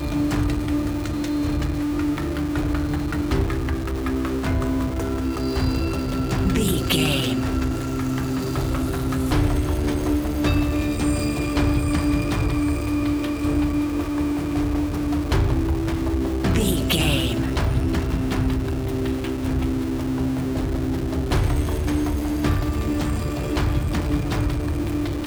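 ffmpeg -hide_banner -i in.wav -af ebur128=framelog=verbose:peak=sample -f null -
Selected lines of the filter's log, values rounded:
Integrated loudness:
  I:         -23.2 LUFS
  Threshold: -33.2 LUFS
Loudness range:
  LRA:         2.2 LU
  Threshold: -43.1 LUFS
  LRA low:   -24.3 LUFS
  LRA high:  -22.1 LUFS
Sample peak:
  Peak:       -6.4 dBFS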